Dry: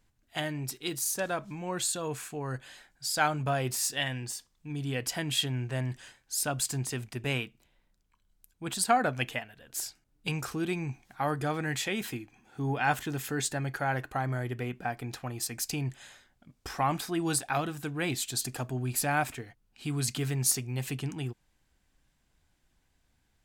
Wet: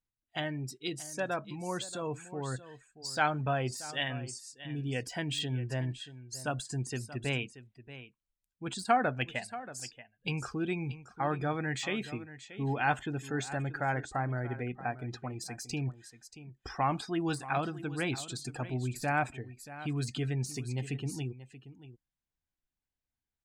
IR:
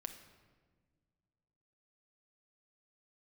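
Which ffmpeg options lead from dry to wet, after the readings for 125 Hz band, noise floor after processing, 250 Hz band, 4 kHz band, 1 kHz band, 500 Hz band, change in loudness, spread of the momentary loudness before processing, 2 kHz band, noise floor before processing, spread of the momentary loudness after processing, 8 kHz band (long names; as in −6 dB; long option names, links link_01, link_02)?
−1.5 dB, below −85 dBFS, −1.5 dB, −5.0 dB, −1.5 dB, −1.5 dB, −3.0 dB, 11 LU, −2.0 dB, −73 dBFS, 13 LU, −11.0 dB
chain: -filter_complex "[0:a]lowpass=9100,afftdn=noise_reduction=21:noise_floor=-43,asplit=2[link_01][link_02];[link_02]aecho=0:1:631:0.178[link_03];[link_01][link_03]amix=inputs=2:normalize=0,deesser=0.75,volume=-1.5dB"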